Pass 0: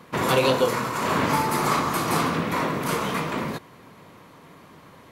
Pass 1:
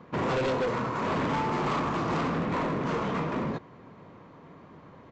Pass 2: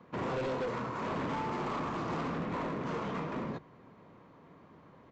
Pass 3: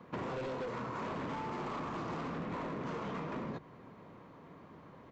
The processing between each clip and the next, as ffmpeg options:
-af "lowpass=f=1000:p=1,aresample=16000,asoftclip=type=hard:threshold=0.0562,aresample=44100"
-filter_complex "[0:a]bandreject=f=50:t=h:w=6,bandreject=f=100:t=h:w=6,bandreject=f=150:t=h:w=6,acrossover=split=320|1400[s0][s1][s2];[s2]alimiter=level_in=2.24:limit=0.0631:level=0:latency=1,volume=0.447[s3];[s0][s1][s3]amix=inputs=3:normalize=0,volume=0.473"
-af "acompressor=threshold=0.0112:ratio=5,volume=1.33"

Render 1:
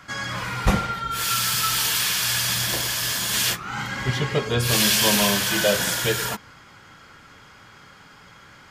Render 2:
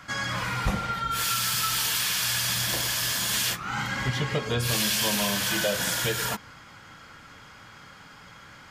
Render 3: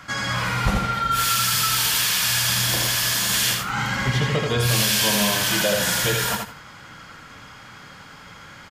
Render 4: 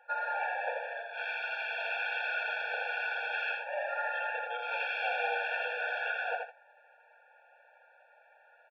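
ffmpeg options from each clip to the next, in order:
-af "equalizer=f=390:w=7.8:g=-7,acompressor=threshold=0.0631:ratio=3"
-af "aecho=1:1:82|164|246:0.631|0.126|0.0252,volume=1.58"
-af "highpass=f=370:t=q:w=0.5412,highpass=f=370:t=q:w=1.307,lowpass=f=2900:t=q:w=0.5176,lowpass=f=2900:t=q:w=0.7071,lowpass=f=2900:t=q:w=1.932,afreqshift=-230,agate=range=0.355:threshold=0.0158:ratio=16:detection=peak,afftfilt=real='re*eq(mod(floor(b*sr/1024/460),2),1)':imag='im*eq(mod(floor(b*sr/1024/460),2),1)':win_size=1024:overlap=0.75,volume=0.668"

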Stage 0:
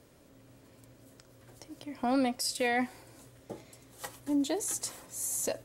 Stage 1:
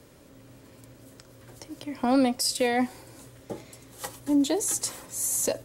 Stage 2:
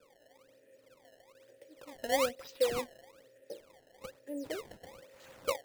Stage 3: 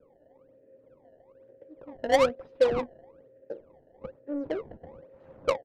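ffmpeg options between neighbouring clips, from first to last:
-filter_complex "[0:a]bandreject=f=690:w=12,acrossover=split=310|1200|2900[s0][s1][s2][s3];[s2]alimiter=level_in=6.31:limit=0.0631:level=0:latency=1:release=460,volume=0.158[s4];[s0][s1][s4][s3]amix=inputs=4:normalize=0,volume=2.11"
-filter_complex "[0:a]asplit=3[s0][s1][s2];[s0]bandpass=f=530:t=q:w=8,volume=1[s3];[s1]bandpass=f=1840:t=q:w=8,volume=0.501[s4];[s2]bandpass=f=2480:t=q:w=8,volume=0.355[s5];[s3][s4][s5]amix=inputs=3:normalize=0,acrusher=samples=21:mix=1:aa=0.000001:lfo=1:lforange=33.6:lforate=1.1"
-filter_complex "[0:a]asplit=2[s0][s1];[s1]adelay=13,volume=0.2[s2];[s0][s2]amix=inputs=2:normalize=0,adynamicsmooth=sensitivity=2:basefreq=610,volume=2.66"

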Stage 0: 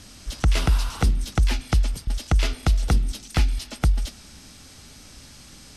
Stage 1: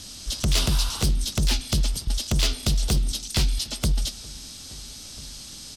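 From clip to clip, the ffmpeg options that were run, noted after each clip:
-filter_complex "[0:a]aeval=exprs='0.158*(abs(mod(val(0)/0.158+3,4)-2)-1)':c=same,highshelf=f=2800:t=q:w=1.5:g=7,asplit=2[s0][s1];[s1]adelay=1341,volume=0.0794,highshelf=f=4000:g=-30.2[s2];[s0][s2]amix=inputs=2:normalize=0"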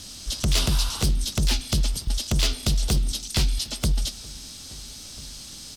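-af "acrusher=bits=9:mix=0:aa=0.000001"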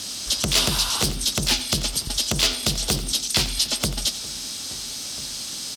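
-filter_complex "[0:a]asplit=2[s0][s1];[s1]alimiter=limit=0.112:level=0:latency=1:release=242,volume=1.19[s2];[s0][s2]amix=inputs=2:normalize=0,highpass=f=310:p=1,aecho=1:1:89:0.188,volume=1.26"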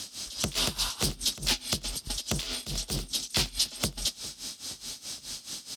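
-af "tremolo=f=4.7:d=0.86,volume=0.596"

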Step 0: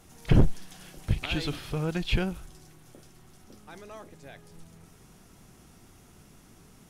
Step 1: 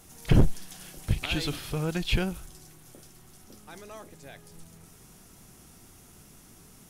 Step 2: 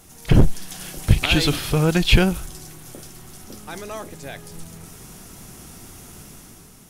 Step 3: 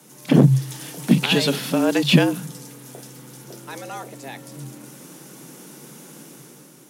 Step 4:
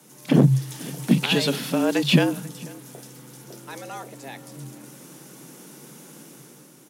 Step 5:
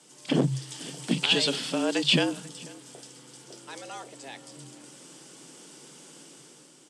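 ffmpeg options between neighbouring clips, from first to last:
-af "highshelf=f=6200:g=9.5"
-af "dynaudnorm=f=140:g=9:m=2.24,volume=1.68"
-af "afreqshift=130,volume=0.891"
-filter_complex "[0:a]asplit=2[s0][s1];[s1]adelay=489.8,volume=0.0891,highshelf=f=4000:g=-11[s2];[s0][s2]amix=inputs=2:normalize=0,volume=0.75"
-af "highpass=180,equalizer=f=210:t=q:w=4:g=-6,equalizer=f=3100:t=q:w=4:g=8,equalizer=f=4800:t=q:w=4:g=7,equalizer=f=8100:t=q:w=4:g=10,lowpass=f=9000:w=0.5412,lowpass=f=9000:w=1.3066,volume=0.596"

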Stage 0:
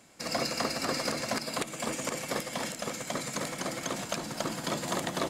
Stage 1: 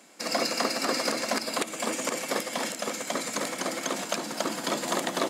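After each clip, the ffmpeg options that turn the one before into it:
-af "highpass=f=210:w=0.5412,highpass=f=210:w=1.3066,volume=1.58"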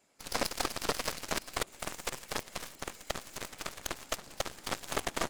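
-af "afftfilt=real='hypot(re,im)*cos(2*PI*random(0))':imag='hypot(re,im)*sin(2*PI*random(1))':win_size=512:overlap=0.75,aeval=exprs='0.141*(cos(1*acos(clip(val(0)/0.141,-1,1)))-cos(1*PI/2))+0.0447*(cos(4*acos(clip(val(0)/0.141,-1,1)))-cos(4*PI/2))+0.0501*(cos(5*acos(clip(val(0)/0.141,-1,1)))-cos(5*PI/2))+0.0631*(cos(7*acos(clip(val(0)/0.141,-1,1)))-cos(7*PI/2))':c=same,volume=0.891"

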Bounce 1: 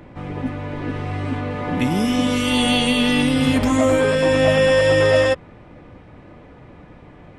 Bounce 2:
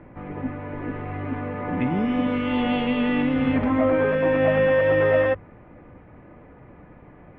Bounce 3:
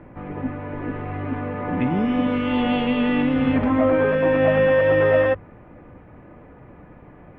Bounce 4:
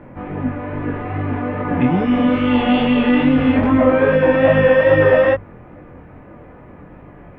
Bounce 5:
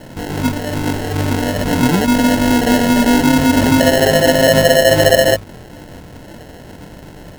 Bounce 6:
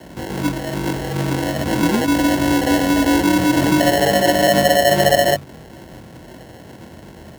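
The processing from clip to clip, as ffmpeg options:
-af "lowpass=f=2300:w=0.5412,lowpass=f=2300:w=1.3066,bandreject=f=50:t=h:w=6,bandreject=f=100:t=h:w=6,bandreject=f=150:t=h:w=6,volume=0.668"
-af "equalizer=f=2100:w=7.4:g=-3,volume=1.26"
-af "flanger=delay=19.5:depth=4.9:speed=2.4,volume=2.51"
-filter_complex "[0:a]asplit=2[s0][s1];[s1]alimiter=limit=0.266:level=0:latency=1:release=155,volume=1.12[s2];[s0][s2]amix=inputs=2:normalize=0,acrusher=samples=37:mix=1:aa=0.000001,volume=0.794"
-af "afreqshift=40,volume=0.668"

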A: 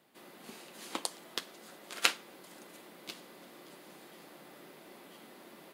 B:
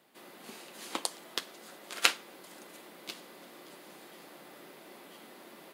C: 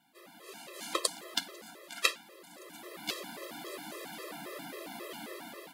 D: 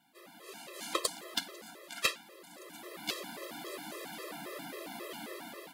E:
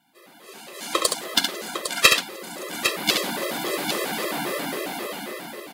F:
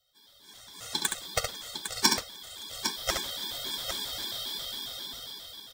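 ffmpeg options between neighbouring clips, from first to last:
-af "lowshelf=f=140:g=-8.5,volume=1.33"
-af "dynaudnorm=f=250:g=5:m=3.76,afftfilt=real='re*gt(sin(2*PI*3.7*pts/sr)*(1-2*mod(floor(b*sr/1024/340),2)),0)':imag='im*gt(sin(2*PI*3.7*pts/sr)*(1-2*mod(floor(b*sr/1024/340),2)),0)':win_size=1024:overlap=0.75"
-af "asoftclip=type=hard:threshold=0.126"
-af "dynaudnorm=f=200:g=11:m=3.76,aecho=1:1:69|805:0.531|0.398,volume=1.5"
-af "afftfilt=real='real(if(lt(b,272),68*(eq(floor(b/68),0)*2+eq(floor(b/68),1)*3+eq(floor(b/68),2)*0+eq(floor(b/68),3)*1)+mod(b,68),b),0)':imag='imag(if(lt(b,272),68*(eq(floor(b/68),0)*2+eq(floor(b/68),1)*3+eq(floor(b/68),2)*0+eq(floor(b/68),3)*1)+mod(b,68),b),0)':win_size=2048:overlap=0.75,aexciter=amount=1.5:drive=1:freq=6900,volume=0.376"

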